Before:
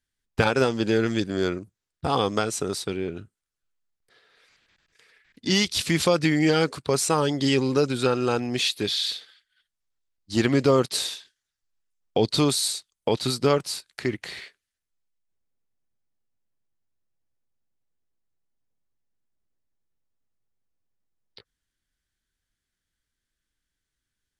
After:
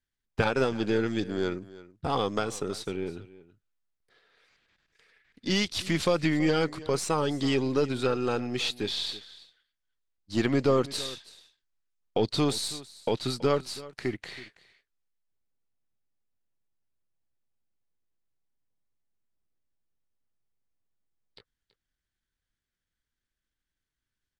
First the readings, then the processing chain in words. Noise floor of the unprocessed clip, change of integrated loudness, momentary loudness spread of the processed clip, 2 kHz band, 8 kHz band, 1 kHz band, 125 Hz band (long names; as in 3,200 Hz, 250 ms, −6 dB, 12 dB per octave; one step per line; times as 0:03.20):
−85 dBFS, −5.0 dB, 12 LU, −5.0 dB, −8.5 dB, −4.5 dB, −5.0 dB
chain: gain on one half-wave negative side −3 dB
high-shelf EQ 6,800 Hz −9 dB
single-tap delay 327 ms −18.5 dB
level −2.5 dB